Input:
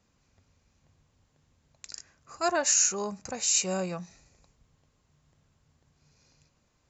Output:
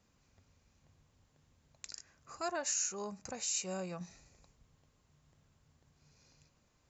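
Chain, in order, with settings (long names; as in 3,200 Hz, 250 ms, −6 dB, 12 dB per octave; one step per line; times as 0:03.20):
0:01.89–0:04.01: downward compressor 1.5 to 1, threshold −47 dBFS, peak gain reduction 9.5 dB
level −2 dB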